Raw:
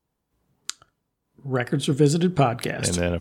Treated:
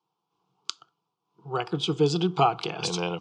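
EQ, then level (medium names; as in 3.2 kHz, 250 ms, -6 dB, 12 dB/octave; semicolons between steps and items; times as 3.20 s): cabinet simulation 210–4600 Hz, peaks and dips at 240 Hz -6 dB, 400 Hz -7 dB, 640 Hz -5 dB, 1.6 kHz -9 dB, 4.1 kHz -6 dB; bass shelf 420 Hz -9.5 dB; static phaser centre 380 Hz, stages 8; +9.0 dB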